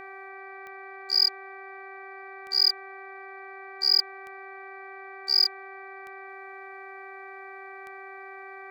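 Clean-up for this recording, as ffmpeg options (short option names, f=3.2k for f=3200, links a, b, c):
-af "adeclick=t=4,bandreject=f=387.9:t=h:w=4,bandreject=f=775.8:t=h:w=4,bandreject=f=1.1637k:t=h:w=4,bandreject=f=1.5516k:t=h:w=4,bandreject=f=1.9395k:t=h:w=4,bandreject=f=2.3274k:t=h:w=4,bandreject=f=740:w=30,agate=range=-21dB:threshold=-35dB"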